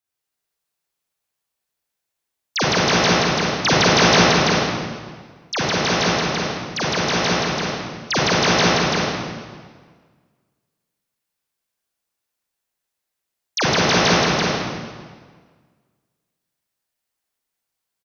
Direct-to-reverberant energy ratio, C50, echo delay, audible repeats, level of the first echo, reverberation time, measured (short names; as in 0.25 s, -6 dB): -7.5 dB, -4.5 dB, 0.337 s, 1, -3.5 dB, 1.6 s